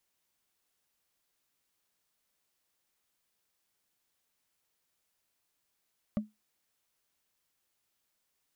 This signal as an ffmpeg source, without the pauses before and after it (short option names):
-f lavfi -i "aevalsrc='0.0668*pow(10,-3*t/0.19)*sin(2*PI*213*t)+0.0266*pow(10,-3*t/0.056)*sin(2*PI*587.2*t)+0.0106*pow(10,-3*t/0.025)*sin(2*PI*1151.1*t)+0.00422*pow(10,-3*t/0.014)*sin(2*PI*1902.7*t)+0.00168*pow(10,-3*t/0.008)*sin(2*PI*2841.4*t)':d=0.45:s=44100"